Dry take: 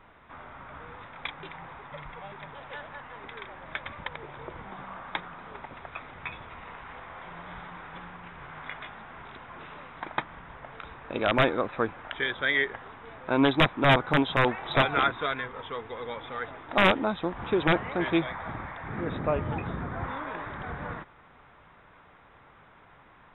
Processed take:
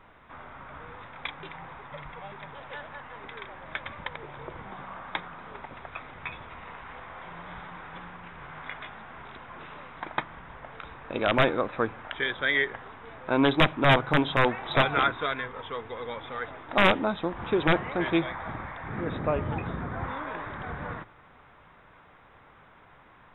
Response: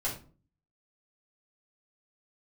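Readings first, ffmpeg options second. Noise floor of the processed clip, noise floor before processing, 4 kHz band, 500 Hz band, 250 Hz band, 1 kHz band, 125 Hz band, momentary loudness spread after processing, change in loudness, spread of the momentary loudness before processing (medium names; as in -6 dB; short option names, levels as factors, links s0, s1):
-55 dBFS, -56 dBFS, +0.5 dB, +0.5 dB, 0.0 dB, +0.5 dB, +0.5 dB, 21 LU, +0.5 dB, 21 LU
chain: -filter_complex "[0:a]asplit=2[s0][s1];[1:a]atrim=start_sample=2205[s2];[s1][s2]afir=irnorm=-1:irlink=0,volume=0.0708[s3];[s0][s3]amix=inputs=2:normalize=0"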